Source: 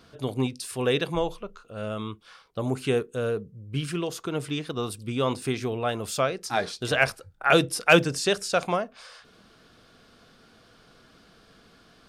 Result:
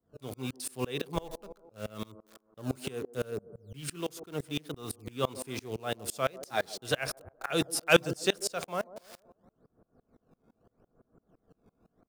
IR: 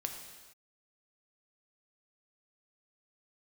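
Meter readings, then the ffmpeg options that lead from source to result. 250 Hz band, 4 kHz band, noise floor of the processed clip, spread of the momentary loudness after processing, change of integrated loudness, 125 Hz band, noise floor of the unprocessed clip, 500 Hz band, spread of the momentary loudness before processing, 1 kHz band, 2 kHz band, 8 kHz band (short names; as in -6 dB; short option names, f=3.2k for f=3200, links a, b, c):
-8.0 dB, -5.0 dB, -79 dBFS, 13 LU, -7.0 dB, -8.5 dB, -57 dBFS, -7.0 dB, 13 LU, -8.5 dB, -8.0 dB, -2.5 dB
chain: -filter_complex "[0:a]highshelf=f=7.8k:g=10.5,acrossover=split=190|970[a][b][c];[a]acrusher=samples=21:mix=1:aa=0.000001:lfo=1:lforange=33.6:lforate=0.79[d];[b]aecho=1:1:141|282|423|564|705:0.282|0.141|0.0705|0.0352|0.0176[e];[c]acrusher=bits=6:mix=0:aa=0.000001[f];[d][e][f]amix=inputs=3:normalize=0,aeval=exprs='val(0)*pow(10,-28*if(lt(mod(-5.9*n/s,1),2*abs(-5.9)/1000),1-mod(-5.9*n/s,1)/(2*abs(-5.9)/1000),(mod(-5.9*n/s,1)-2*abs(-5.9)/1000)/(1-2*abs(-5.9)/1000))/20)':c=same"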